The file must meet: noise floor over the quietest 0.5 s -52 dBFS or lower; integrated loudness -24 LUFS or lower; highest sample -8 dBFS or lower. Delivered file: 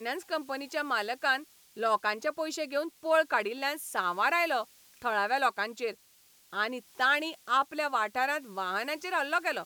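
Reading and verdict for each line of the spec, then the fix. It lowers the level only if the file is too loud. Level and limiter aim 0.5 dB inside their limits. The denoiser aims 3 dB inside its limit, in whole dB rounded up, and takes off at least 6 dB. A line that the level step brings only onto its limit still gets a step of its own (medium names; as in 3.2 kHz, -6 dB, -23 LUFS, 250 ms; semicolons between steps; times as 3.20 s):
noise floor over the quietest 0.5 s -62 dBFS: pass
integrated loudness -30.0 LUFS: pass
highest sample -13.5 dBFS: pass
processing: none needed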